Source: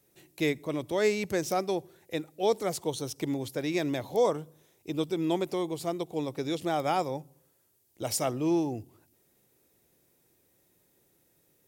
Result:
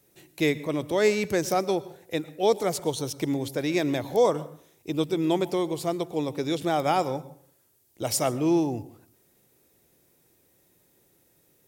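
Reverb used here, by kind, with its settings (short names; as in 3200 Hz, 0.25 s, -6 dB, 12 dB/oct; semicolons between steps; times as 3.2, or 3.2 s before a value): plate-style reverb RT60 0.5 s, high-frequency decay 0.6×, pre-delay 0.1 s, DRR 17.5 dB; gain +4 dB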